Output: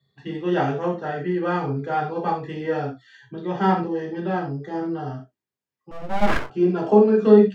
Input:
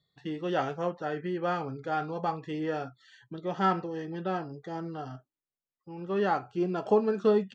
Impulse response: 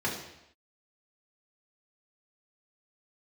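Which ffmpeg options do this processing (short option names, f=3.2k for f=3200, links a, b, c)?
-filter_complex "[1:a]atrim=start_sample=2205,afade=t=out:st=0.14:d=0.01,atrim=end_sample=6615[a];[0:a][a]afir=irnorm=-1:irlink=0,asettb=1/sr,asplit=3[b][c][d];[b]atrim=end=5.914[e];[c]atrim=start=5.91:end=6.5,asetpts=PTS-STARTPTS,afade=t=in:d=0.004:c=qsin,afade=t=out:st=0.586:d=0.004:c=qsin,aeval=exprs='abs(val(0))':c=same[f];[d]atrim=start=6.496[g];[e][f]acrossfade=d=0.004:c1=hsin:c2=qsin[h];[h][g]acrossfade=d=0.004:c1=qsin:c2=hsin,volume=-1.5dB"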